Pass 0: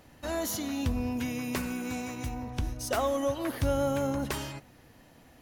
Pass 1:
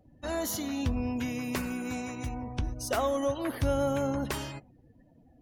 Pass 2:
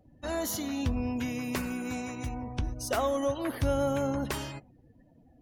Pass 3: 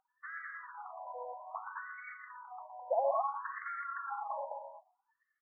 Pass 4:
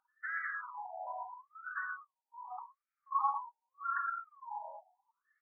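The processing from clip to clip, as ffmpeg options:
-af "afftdn=nr=26:nf=-51"
-af anull
-filter_complex "[0:a]asplit=2[a][b];[b]aecho=0:1:116.6|209.9:0.501|0.708[c];[a][c]amix=inputs=2:normalize=0,afftfilt=real='re*between(b*sr/1024,710*pow(1600/710,0.5+0.5*sin(2*PI*0.6*pts/sr))/1.41,710*pow(1600/710,0.5+0.5*sin(2*PI*0.6*pts/sr))*1.41)':imag='im*between(b*sr/1024,710*pow(1600/710,0.5+0.5*sin(2*PI*0.6*pts/sr))/1.41,710*pow(1600/710,0.5+0.5*sin(2*PI*0.6*pts/sr))*1.41)':win_size=1024:overlap=0.75"
-af "equalizer=f=500:t=o:w=1:g=-11,equalizer=f=1k:t=o:w=1:g=-5,equalizer=f=2k:t=o:w=1:g=-4,afftfilt=real='re*between(b*sr/1024,660*pow(1800/660,0.5+0.5*sin(2*PI*0.77*pts/sr))/1.41,660*pow(1800/660,0.5+0.5*sin(2*PI*0.77*pts/sr))*1.41)':imag='im*between(b*sr/1024,660*pow(1800/660,0.5+0.5*sin(2*PI*0.77*pts/sr))/1.41,660*pow(1800/660,0.5+0.5*sin(2*PI*0.77*pts/sr))*1.41)':win_size=1024:overlap=0.75,volume=12dB"

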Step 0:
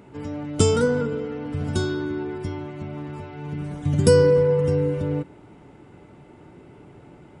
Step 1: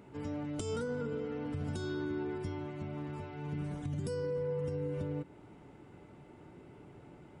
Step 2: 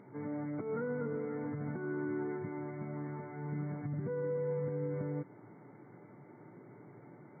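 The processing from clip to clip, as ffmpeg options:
-af "acompressor=threshold=-21dB:ratio=3,alimiter=limit=-21dB:level=0:latency=1:release=219,volume=-7dB"
-af "afftfilt=real='re*between(b*sr/4096,100,2300)':imag='im*between(b*sr/4096,100,2300)':win_size=4096:overlap=0.75" -ar 22050 -c:a aac -b:a 16k

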